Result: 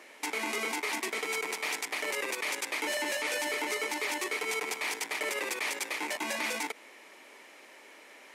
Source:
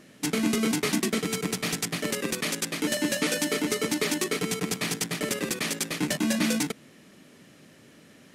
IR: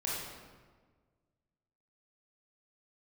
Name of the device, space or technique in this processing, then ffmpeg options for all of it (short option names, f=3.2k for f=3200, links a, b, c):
laptop speaker: -af "highpass=f=370:w=0.5412,highpass=f=370:w=1.3066,equalizer=f=910:t=o:w=0.49:g=12,equalizer=f=2.2k:t=o:w=0.43:g=10,alimiter=limit=-23dB:level=0:latency=1:release=57"